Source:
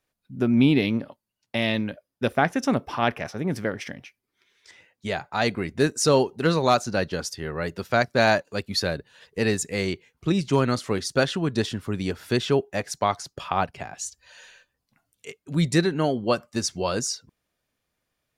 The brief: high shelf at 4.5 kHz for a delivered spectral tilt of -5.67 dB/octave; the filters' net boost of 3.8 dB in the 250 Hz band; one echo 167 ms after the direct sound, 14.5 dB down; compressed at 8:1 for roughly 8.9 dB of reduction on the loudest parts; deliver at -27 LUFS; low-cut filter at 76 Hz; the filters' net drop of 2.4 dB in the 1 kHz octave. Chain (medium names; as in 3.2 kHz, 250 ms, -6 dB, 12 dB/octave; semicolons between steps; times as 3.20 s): high-pass 76 Hz; peaking EQ 250 Hz +5 dB; peaking EQ 1 kHz -3.5 dB; treble shelf 4.5 kHz -8 dB; compression 8:1, threshold -20 dBFS; delay 167 ms -14.5 dB; trim +1 dB